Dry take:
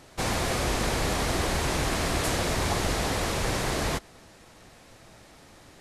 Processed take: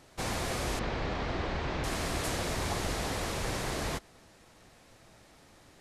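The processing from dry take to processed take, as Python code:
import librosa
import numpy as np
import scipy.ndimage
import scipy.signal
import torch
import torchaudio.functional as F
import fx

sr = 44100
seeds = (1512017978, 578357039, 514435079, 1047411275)

y = fx.bessel_lowpass(x, sr, hz=3200.0, order=4, at=(0.79, 1.84))
y = y * 10.0 ** (-6.0 / 20.0)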